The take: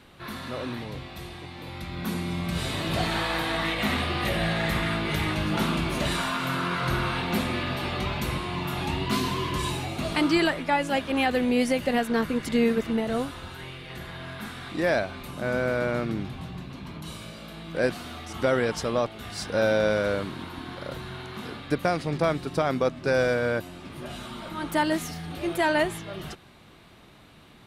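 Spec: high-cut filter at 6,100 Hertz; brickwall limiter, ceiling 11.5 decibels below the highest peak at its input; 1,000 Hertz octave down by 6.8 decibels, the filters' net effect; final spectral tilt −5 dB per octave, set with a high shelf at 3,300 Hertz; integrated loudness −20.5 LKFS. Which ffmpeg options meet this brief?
ffmpeg -i in.wav -af "lowpass=6100,equalizer=frequency=1000:width_type=o:gain=-8.5,highshelf=frequency=3300:gain=-7,volume=14dB,alimiter=limit=-10.5dB:level=0:latency=1" out.wav

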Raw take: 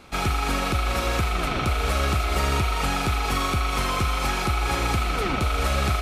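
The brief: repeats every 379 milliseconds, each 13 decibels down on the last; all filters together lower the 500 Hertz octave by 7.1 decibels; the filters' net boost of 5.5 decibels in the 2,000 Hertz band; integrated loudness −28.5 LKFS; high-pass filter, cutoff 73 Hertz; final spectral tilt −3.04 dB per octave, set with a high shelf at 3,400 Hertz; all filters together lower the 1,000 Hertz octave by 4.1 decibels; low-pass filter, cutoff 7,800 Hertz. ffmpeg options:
ffmpeg -i in.wav -af "highpass=73,lowpass=7800,equalizer=frequency=500:width_type=o:gain=-7.5,equalizer=frequency=1000:width_type=o:gain=-8.5,equalizer=frequency=2000:width_type=o:gain=7.5,highshelf=frequency=3400:gain=5,aecho=1:1:379|758|1137:0.224|0.0493|0.0108,volume=-5.5dB" out.wav

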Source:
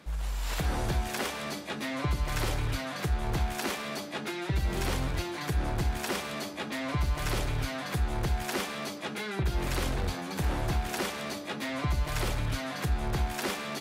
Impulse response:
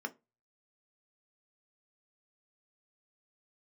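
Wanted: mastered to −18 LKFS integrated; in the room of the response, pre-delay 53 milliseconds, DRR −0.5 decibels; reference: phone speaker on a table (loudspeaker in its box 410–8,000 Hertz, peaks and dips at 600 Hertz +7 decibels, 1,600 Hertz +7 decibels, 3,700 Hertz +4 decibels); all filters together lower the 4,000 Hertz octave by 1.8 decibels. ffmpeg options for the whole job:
-filter_complex "[0:a]equalizer=frequency=4000:width_type=o:gain=-5,asplit=2[link_01][link_02];[1:a]atrim=start_sample=2205,adelay=53[link_03];[link_02][link_03]afir=irnorm=-1:irlink=0,volume=-1dB[link_04];[link_01][link_04]amix=inputs=2:normalize=0,highpass=frequency=410:width=0.5412,highpass=frequency=410:width=1.3066,equalizer=frequency=600:width_type=q:width=4:gain=7,equalizer=frequency=1600:width_type=q:width=4:gain=7,equalizer=frequency=3700:width_type=q:width=4:gain=4,lowpass=frequency=8000:width=0.5412,lowpass=frequency=8000:width=1.3066,volume=13.5dB"

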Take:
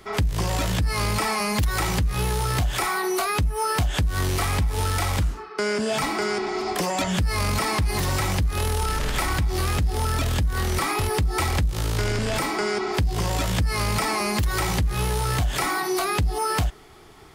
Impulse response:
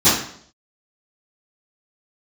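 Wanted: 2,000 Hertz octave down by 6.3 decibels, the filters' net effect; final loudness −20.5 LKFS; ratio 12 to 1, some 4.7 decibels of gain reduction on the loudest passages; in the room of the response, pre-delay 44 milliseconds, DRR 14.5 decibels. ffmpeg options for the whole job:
-filter_complex "[0:a]equalizer=frequency=2000:width_type=o:gain=-8,acompressor=threshold=-23dB:ratio=12,asplit=2[link_01][link_02];[1:a]atrim=start_sample=2205,adelay=44[link_03];[link_02][link_03]afir=irnorm=-1:irlink=0,volume=-37dB[link_04];[link_01][link_04]amix=inputs=2:normalize=0,volume=7dB"

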